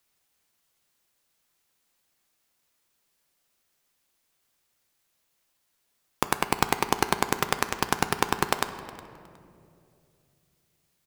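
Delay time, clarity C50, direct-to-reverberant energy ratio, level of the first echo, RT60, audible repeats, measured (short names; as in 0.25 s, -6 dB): 0.364 s, 11.0 dB, 8.5 dB, -20.5 dB, 2.5 s, 2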